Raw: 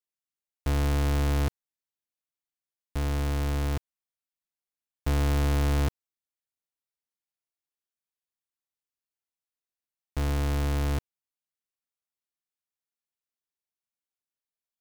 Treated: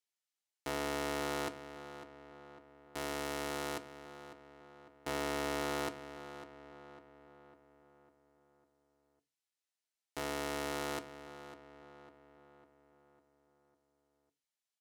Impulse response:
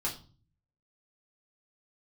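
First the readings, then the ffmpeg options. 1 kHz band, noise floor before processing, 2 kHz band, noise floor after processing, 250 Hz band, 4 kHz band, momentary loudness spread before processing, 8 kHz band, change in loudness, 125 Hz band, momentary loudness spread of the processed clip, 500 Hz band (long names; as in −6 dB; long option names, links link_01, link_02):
−2.0 dB, below −85 dBFS, −2.0 dB, below −85 dBFS, −8.5 dB, −2.5 dB, 9 LU, −3.0 dB, −11.0 dB, −24.5 dB, 20 LU, −2.0 dB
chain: -filter_complex "[0:a]crystalizer=i=3:c=0,asoftclip=type=hard:threshold=-15.5dB,highpass=360,bandreject=frequency=1100:width=13,asplit=2[link_01][link_02];[1:a]atrim=start_sample=2205,asetrate=83790,aresample=44100[link_03];[link_02][link_03]afir=irnorm=-1:irlink=0,volume=-6.5dB[link_04];[link_01][link_04]amix=inputs=2:normalize=0,adynamicsmooth=sensitivity=6:basefreq=6100,asplit=2[link_05][link_06];[link_06]adelay=551,lowpass=frequency=2400:poles=1,volume=-12.5dB,asplit=2[link_07][link_08];[link_08]adelay=551,lowpass=frequency=2400:poles=1,volume=0.54,asplit=2[link_09][link_10];[link_10]adelay=551,lowpass=frequency=2400:poles=1,volume=0.54,asplit=2[link_11][link_12];[link_12]adelay=551,lowpass=frequency=2400:poles=1,volume=0.54,asplit=2[link_13][link_14];[link_14]adelay=551,lowpass=frequency=2400:poles=1,volume=0.54,asplit=2[link_15][link_16];[link_16]adelay=551,lowpass=frequency=2400:poles=1,volume=0.54[link_17];[link_05][link_07][link_09][link_11][link_13][link_15][link_17]amix=inputs=7:normalize=0,asoftclip=type=tanh:threshold=-18.5dB,volume=-2dB"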